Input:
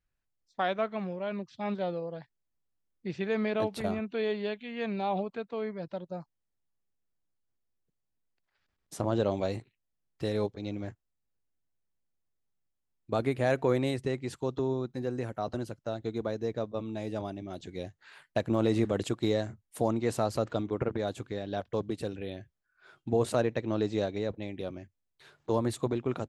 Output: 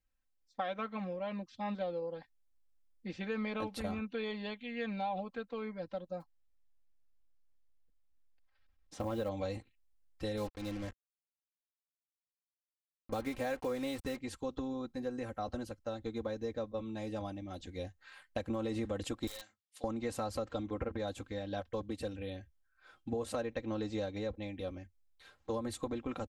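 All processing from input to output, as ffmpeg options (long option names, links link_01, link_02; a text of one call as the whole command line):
ffmpeg -i in.wav -filter_complex "[0:a]asettb=1/sr,asplit=3[link_01][link_02][link_03];[link_01]atrim=end=6.204[link_04];[link_02]atrim=start=6.2:end=9.29,asetpts=PTS-STARTPTS,afade=type=in:duration=0.004:curve=qsin,afade=type=out:start_time=3.086:duration=0.004:curve=qsin,lowpass=5200,acrusher=bits=7:mode=log:mix=0:aa=0.000001,asoftclip=type=hard:threshold=-17.5dB[link_05];[link_03]atrim=start=9.286[link_06];[link_04][link_05]acrossfade=duration=0.004:curve1=hsin:curve2=qsin[link_07];[link_07][link_06]acrossfade=duration=0.004:curve1=qsin:curve2=hsin,asettb=1/sr,asplit=3[link_08][link_09][link_10];[link_08]atrim=end=10.374[link_11];[link_09]atrim=start=10.37:end=14.18,asetpts=PTS-STARTPTS,afade=type=in:duration=0.004:curve=qsin,afade=type=out:start_time=3.806:duration=0.004:curve=qsin,highpass=frequency=54:poles=1,acrusher=bits=6:mix=0:aa=0.5[link_12];[link_10]atrim=start=14.176[link_13];[link_11][link_12]acrossfade=duration=0.004:curve1=hsin:curve2=qsin[link_14];[link_14][link_13]acrossfade=duration=0.004:curve1=qsin:curve2=hsin,asettb=1/sr,asplit=3[link_15][link_16][link_17];[link_15]atrim=end=19.274[link_18];[link_16]atrim=start=19.27:end=19.84,asetpts=PTS-STARTPTS,afade=type=in:duration=0.004:curve=qsin,afade=type=out:start_time=0.566:duration=0.004:curve=qsin,bandpass=frequency=4000:width_type=q:width=1.3,aeval=exprs='(mod(47.3*val(0)+1,2)-1)/47.3':channel_layout=same[link_19];[link_17]atrim=start=19.836[link_20];[link_18][link_19]acrossfade=duration=0.004:curve1=hsin:curve2=qsin[link_21];[link_21][link_20]acrossfade=duration=0.004:curve1=qsin:curve2=hsin,asubboost=boost=4:cutoff=92,aecho=1:1:3.8:0.81,acompressor=threshold=-28dB:ratio=6,volume=-4.5dB" out.wav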